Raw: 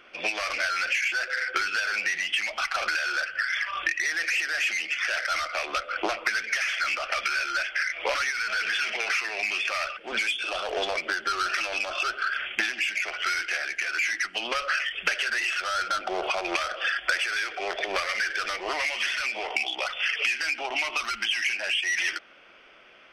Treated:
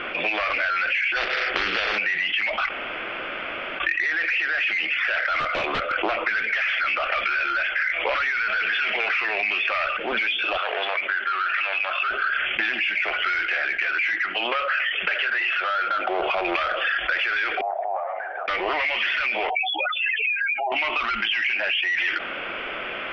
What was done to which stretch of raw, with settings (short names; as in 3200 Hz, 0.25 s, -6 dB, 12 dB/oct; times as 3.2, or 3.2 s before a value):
1.15–1.97 spectral limiter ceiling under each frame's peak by 24 dB
2.69–3.8 room tone
5.4–5.92 wrapped overs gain 23 dB
10.57–12.11 band-pass 1900 Hz, Q 1.1
14.16–16.2 tone controls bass -11 dB, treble -5 dB
17.61–18.48 Butterworth band-pass 760 Hz, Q 3.2
19.5–20.72 spectral contrast raised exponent 3.6
whole clip: LPF 3200 Hz 24 dB/oct; fast leveller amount 70%